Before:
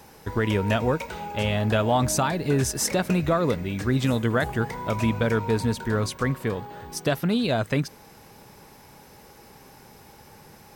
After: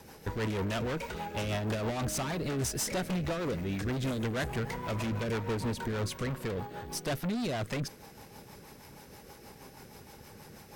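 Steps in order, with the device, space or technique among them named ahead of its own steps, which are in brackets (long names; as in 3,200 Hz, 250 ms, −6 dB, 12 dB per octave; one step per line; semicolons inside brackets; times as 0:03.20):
overdriven rotary cabinet (tube saturation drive 31 dB, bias 0.45; rotating-speaker cabinet horn 6.3 Hz)
level +2.5 dB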